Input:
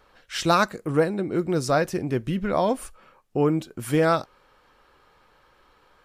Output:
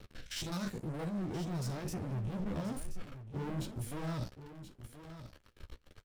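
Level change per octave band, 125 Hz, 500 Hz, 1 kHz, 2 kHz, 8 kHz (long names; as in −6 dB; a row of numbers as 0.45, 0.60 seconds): −8.0, −21.0, −21.0, −19.0, −10.0 decibels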